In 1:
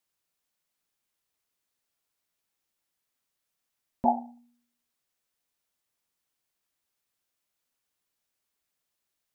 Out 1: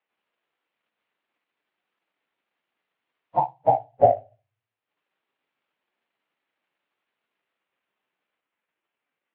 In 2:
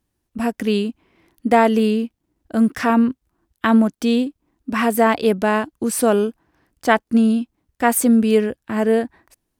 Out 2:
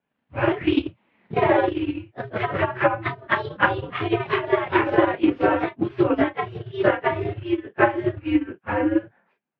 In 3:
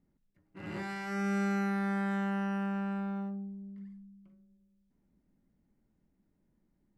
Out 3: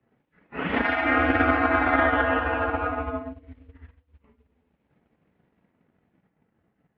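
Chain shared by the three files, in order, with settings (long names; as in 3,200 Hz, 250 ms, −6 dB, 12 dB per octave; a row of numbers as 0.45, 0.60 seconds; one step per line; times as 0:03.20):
random phases in long frames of 100 ms
downward compressor 4 to 1, threshold −21 dBFS
noise that follows the level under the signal 32 dB
single-sideband voice off tune −130 Hz 340–3,000 Hz
delay with pitch and tempo change per echo 88 ms, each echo +2 semitones, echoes 2
transient designer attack +8 dB, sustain −8 dB
loudness normalisation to −23 LKFS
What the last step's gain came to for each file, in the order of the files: +6.5, +2.0, +14.0 decibels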